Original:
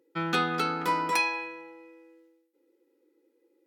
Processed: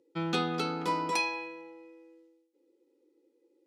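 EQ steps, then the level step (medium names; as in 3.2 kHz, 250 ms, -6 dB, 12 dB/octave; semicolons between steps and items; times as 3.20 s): low-pass 8.3 kHz 12 dB/octave; peaking EQ 1.6 kHz -10 dB 1.1 oct; 0.0 dB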